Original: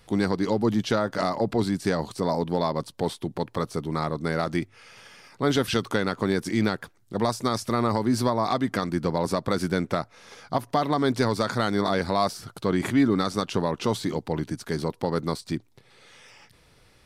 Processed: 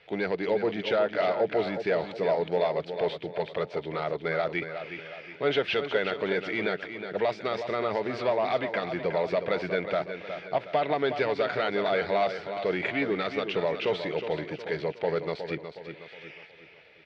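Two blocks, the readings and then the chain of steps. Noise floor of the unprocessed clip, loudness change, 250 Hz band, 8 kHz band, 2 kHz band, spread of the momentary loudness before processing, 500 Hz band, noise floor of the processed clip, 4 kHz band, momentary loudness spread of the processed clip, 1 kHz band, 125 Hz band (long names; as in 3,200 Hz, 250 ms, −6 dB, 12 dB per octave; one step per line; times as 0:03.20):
−58 dBFS, −2.5 dB, −10.0 dB, below −20 dB, +2.0 dB, 7 LU, +1.0 dB, −50 dBFS, −3.0 dB, 9 LU, −3.5 dB, −11.5 dB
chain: tilt shelving filter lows −6.5 dB, about 1,200 Hz
soft clipping −20 dBFS, distortion −13 dB
loudspeaker in its box 100–3,100 Hz, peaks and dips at 110 Hz −7 dB, 240 Hz −10 dB, 440 Hz +8 dB, 630 Hz +9 dB, 1,100 Hz −9 dB, 2,300 Hz +6 dB
on a send: repeating echo 365 ms, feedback 44%, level −9 dB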